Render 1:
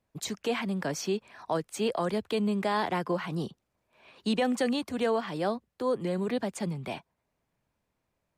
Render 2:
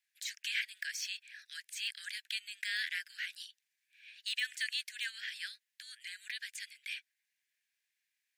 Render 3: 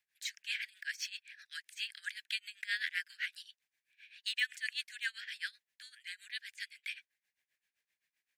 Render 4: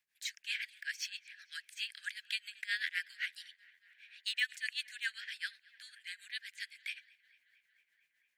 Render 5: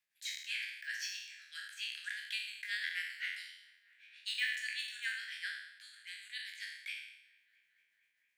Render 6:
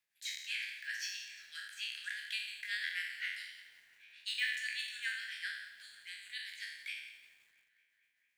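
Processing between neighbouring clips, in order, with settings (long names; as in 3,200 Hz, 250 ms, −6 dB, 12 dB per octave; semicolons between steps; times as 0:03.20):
de-essing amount 90%; Butterworth high-pass 1,600 Hz 96 dB per octave; level +2.5 dB
high-shelf EQ 2,400 Hz −8 dB; amplitude tremolo 7.7 Hz, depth 89%; level +7.5 dB
tape delay 226 ms, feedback 86%, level −23.5 dB, low-pass 4,300 Hz
peak hold with a decay on every bin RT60 0.82 s; level −4.5 dB
feedback echo at a low word length 174 ms, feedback 55%, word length 10 bits, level −14 dB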